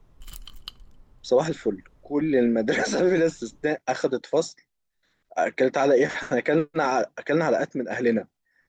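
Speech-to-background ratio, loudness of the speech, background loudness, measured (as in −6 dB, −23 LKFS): 20.0 dB, −24.0 LKFS, −44.0 LKFS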